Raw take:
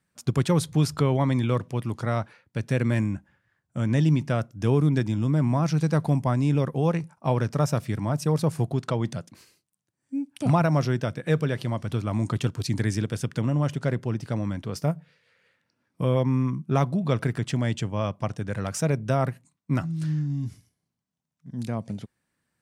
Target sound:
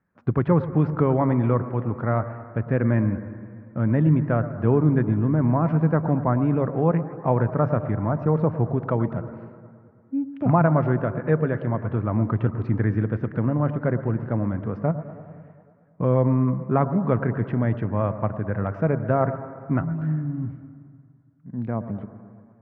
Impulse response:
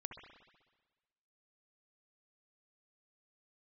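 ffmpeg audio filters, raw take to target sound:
-filter_complex "[0:a]lowpass=f=1.7k:w=0.5412,lowpass=f=1.7k:w=1.3066,equalizer=f=140:t=o:w=0.2:g=-6,asplit=2[a][b];[1:a]atrim=start_sample=2205,asetrate=26901,aresample=44100[c];[b][c]afir=irnorm=-1:irlink=0,volume=-3.5dB[d];[a][d]amix=inputs=2:normalize=0"

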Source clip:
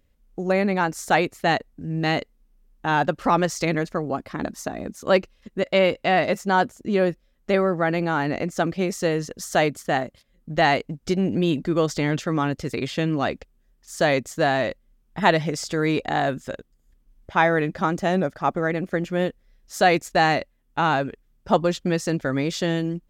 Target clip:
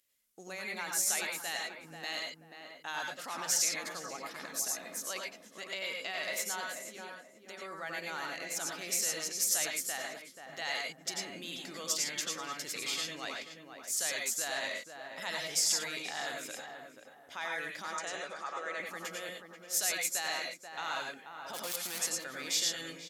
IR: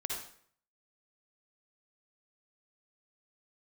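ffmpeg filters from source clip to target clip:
-filter_complex "[0:a]asettb=1/sr,asplit=3[a][b][c];[a]atrim=end=6.724[d];[b]atrim=start=6.72:end=7.62,asetpts=PTS-STARTPTS,afade=t=in:d=0.004:c=qsin,afade=t=out:st=0.896:d=0.004:c=qsin,acompressor=threshold=-31dB:ratio=12[e];[c]atrim=start=7.616[f];[d][e]acrossfade=d=0.004:c1=hsin:c2=qsin[g];[g][f]acrossfade=d=0.004:c1=qsin:c2=hsin,asettb=1/sr,asplit=3[h][i][j];[h]atrim=end=17.884[k];[i]atrim=start=17.88:end=18.8,asetpts=PTS-STARTPTS,afade=t=in:d=0.004:c=qsin,afade=t=out:st=0.916:d=0.004:c=qsin,highpass=390,equalizer=f=490:t=q:w=4:g=4,equalizer=f=1.2k:t=q:w=4:g=6,equalizer=f=5.3k:t=q:w=4:g=-5,lowpass=f=8.2k:w=0.5412,lowpass=f=8.2k:w=1.3066[l];[j]atrim=start=18.796[m];[k][l]acrossfade=d=0.004:c1=hsin:c2=qsin[n];[n][m]acrossfade=d=0.004:c1=qsin:c2=hsin,asplit=3[o][p][q];[o]afade=t=out:st=21.53:d=0.02[r];[p]aeval=exprs='val(0)*gte(abs(val(0)),0.0596)':c=same,afade=t=in:st=21.53:d=0.02,afade=t=out:st=22.01:d=0.02[s];[q]afade=t=in:st=22.01:d=0.02[t];[r][s][t]amix=inputs=3:normalize=0,alimiter=limit=-18dB:level=0:latency=1:release=21,aderivative,asplit=2[u][v];[v]adelay=484,lowpass=f=1.3k:p=1,volume=-6dB,asplit=2[w][x];[x]adelay=484,lowpass=f=1.3k:p=1,volume=0.34,asplit=2[y][z];[z]adelay=484,lowpass=f=1.3k:p=1,volume=0.34,asplit=2[aa][ab];[ab]adelay=484,lowpass=f=1.3k:p=1,volume=0.34[ac];[u][w][y][aa][ac]amix=inputs=5:normalize=0[ad];[1:a]atrim=start_sample=2205,atrim=end_sample=3087,asetrate=26019,aresample=44100[ae];[ad][ae]afir=irnorm=-1:irlink=0,volume=3.5dB"

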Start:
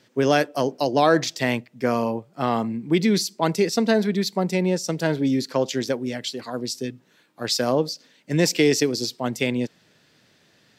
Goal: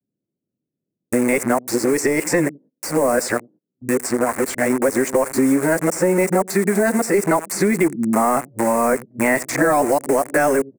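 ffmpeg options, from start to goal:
-filter_complex "[0:a]areverse,highpass=f=140:p=1,aecho=1:1:85:0.0794,acrossover=split=380[a][b];[b]acrusher=bits=5:mix=0:aa=0.000001[c];[a][c]amix=inputs=2:normalize=0,bass=f=250:g=-6,treble=f=4k:g=-2,apsyclip=16.5dB,acompressor=threshold=-13dB:ratio=1.5,firequalizer=gain_entry='entry(2100,0);entry(3200,-24);entry(8300,14);entry(12000,6)':delay=0.05:min_phase=1,acrossover=split=180|3900[d][e][f];[d]acompressor=threshold=-34dB:ratio=4[g];[e]acompressor=threshold=-14dB:ratio=4[h];[f]acompressor=threshold=-31dB:ratio=4[i];[g][h][i]amix=inputs=3:normalize=0,bandreject=f=450:w=12,agate=range=-28dB:threshold=-42dB:ratio=16:detection=peak"

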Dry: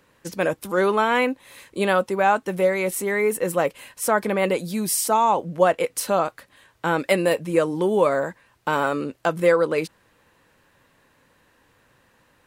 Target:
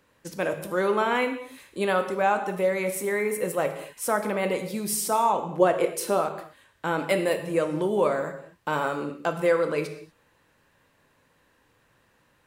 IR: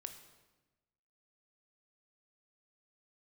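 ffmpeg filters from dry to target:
-filter_complex "[0:a]asettb=1/sr,asplit=3[a][b][c];[a]atrim=end=5.414[d];[b]atrim=start=5.41:end=6.18,asetpts=PTS-STARTPTS,afade=t=in:d=0.004:c=qsin,afade=t=out:st=0.766:d=0.004:c=qsin,equalizer=f=370:w=2.4:g=9[e];[c]atrim=start=6.176[f];[d][e]acrossfade=d=0.004:c1=hsin:c2=qsin[g];[g][f]acrossfade=d=0.004:c1=qsin:c2=hsin[h];[1:a]atrim=start_sample=2205,afade=t=out:st=0.3:d=0.01,atrim=end_sample=13671[i];[h][i]afir=irnorm=-1:irlink=0"

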